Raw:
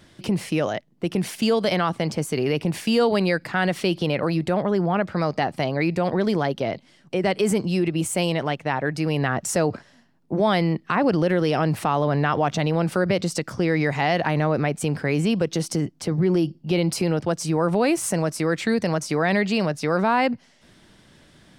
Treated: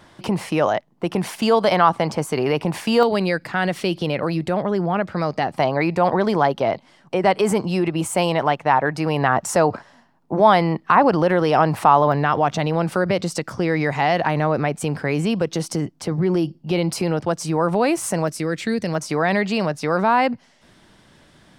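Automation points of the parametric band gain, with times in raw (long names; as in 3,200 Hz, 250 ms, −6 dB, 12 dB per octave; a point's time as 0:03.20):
parametric band 940 Hz 1.3 octaves
+12 dB
from 0:03.03 +2 dB
from 0:05.54 +11.5 dB
from 0:12.12 +5 dB
from 0:18.28 −5 dB
from 0:18.95 +4.5 dB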